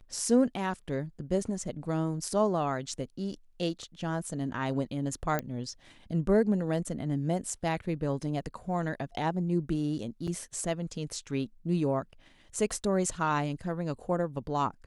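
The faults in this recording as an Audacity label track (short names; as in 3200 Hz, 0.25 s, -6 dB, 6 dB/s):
5.390000	5.390000	pop -16 dBFS
10.270000	10.280000	gap 6.5 ms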